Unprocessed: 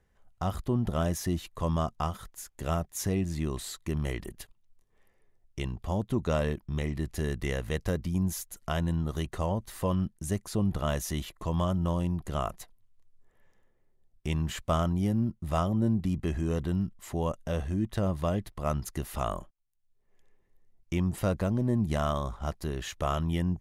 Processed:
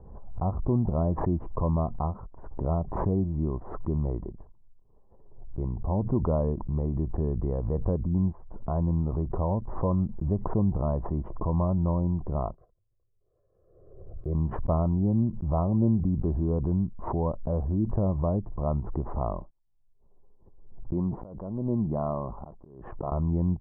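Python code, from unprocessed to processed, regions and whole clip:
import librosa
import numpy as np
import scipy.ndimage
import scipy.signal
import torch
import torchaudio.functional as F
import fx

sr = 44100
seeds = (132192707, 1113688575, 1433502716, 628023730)

y = fx.chain(x, sr, fx.fixed_phaser(hz=870.0, stages=6),
    fx.notch_comb(f0_hz=940.0), at=(12.54, 14.35))
y = fx.chain(y, sr, fx.peak_eq(hz=68.0, db=-13.5, octaves=1.1),
    fx.auto_swell(attack_ms=616.0),
    fx.sustainer(db_per_s=97.0), at=(20.93, 23.12))
y = scipy.signal.sosfilt(scipy.signal.ellip(4, 1.0, 80, 1000.0, 'lowpass', fs=sr, output='sos'), y)
y = fx.low_shelf(y, sr, hz=130.0, db=4.5)
y = fx.pre_swell(y, sr, db_per_s=54.0)
y = F.gain(torch.from_numpy(y), 1.5).numpy()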